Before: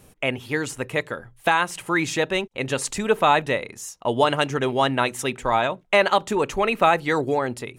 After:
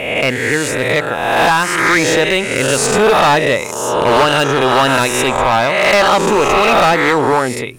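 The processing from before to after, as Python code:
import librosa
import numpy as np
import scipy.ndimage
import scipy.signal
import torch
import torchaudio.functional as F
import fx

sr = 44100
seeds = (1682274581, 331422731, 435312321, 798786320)

y = fx.spec_swells(x, sr, rise_s=1.28)
y = np.clip(10.0 ** (14.5 / 20.0) * y, -1.0, 1.0) / 10.0 ** (14.5 / 20.0)
y = y * librosa.db_to_amplitude(7.5)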